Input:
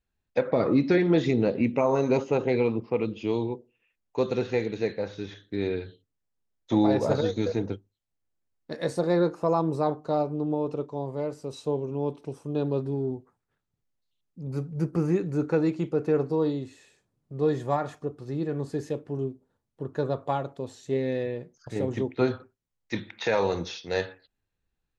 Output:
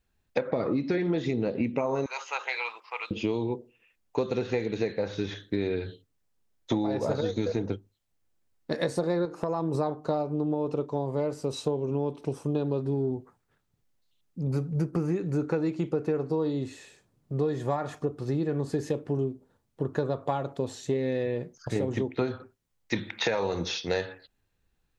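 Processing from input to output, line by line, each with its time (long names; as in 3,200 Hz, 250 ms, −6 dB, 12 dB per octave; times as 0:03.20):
0:02.06–0:03.11: high-pass filter 1,000 Hz 24 dB per octave
0:09.25–0:09.75: downward compressor, threshold −28 dBFS
whole clip: downward compressor 10 to 1, threshold −31 dBFS; level +7 dB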